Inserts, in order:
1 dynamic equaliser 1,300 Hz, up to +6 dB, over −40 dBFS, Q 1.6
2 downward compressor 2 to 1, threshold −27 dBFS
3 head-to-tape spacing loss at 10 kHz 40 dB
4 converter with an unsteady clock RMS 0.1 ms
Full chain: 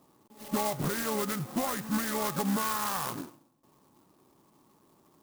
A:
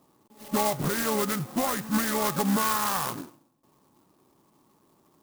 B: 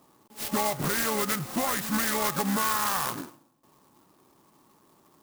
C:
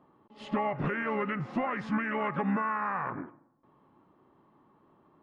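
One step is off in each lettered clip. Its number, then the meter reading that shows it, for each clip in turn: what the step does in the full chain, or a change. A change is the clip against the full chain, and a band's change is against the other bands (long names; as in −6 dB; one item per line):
2, average gain reduction 3.5 dB
3, 125 Hz band −4.0 dB
4, 4 kHz band −12.5 dB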